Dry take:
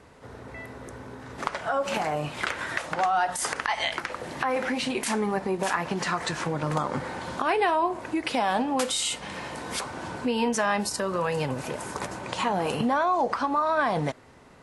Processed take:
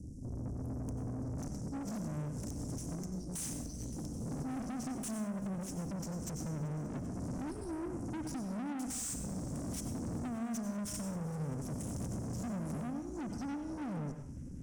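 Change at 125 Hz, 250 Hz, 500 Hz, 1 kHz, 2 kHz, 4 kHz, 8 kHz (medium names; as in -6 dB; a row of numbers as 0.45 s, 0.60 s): -2.0 dB, -6.0 dB, -18.0 dB, -23.0 dB, -25.5 dB, -21.5 dB, -8.5 dB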